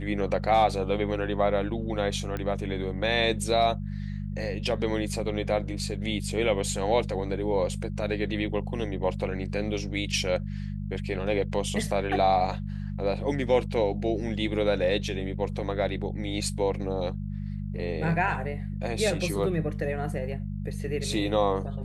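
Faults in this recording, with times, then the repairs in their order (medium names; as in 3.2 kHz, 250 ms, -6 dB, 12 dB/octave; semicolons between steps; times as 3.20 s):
hum 50 Hz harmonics 4 -33 dBFS
2.37 s: pop -20 dBFS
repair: de-click; de-hum 50 Hz, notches 4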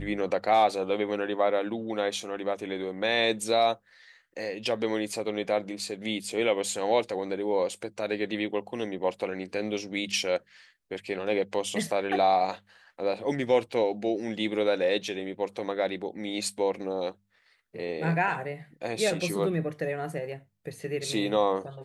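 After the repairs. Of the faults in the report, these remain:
nothing left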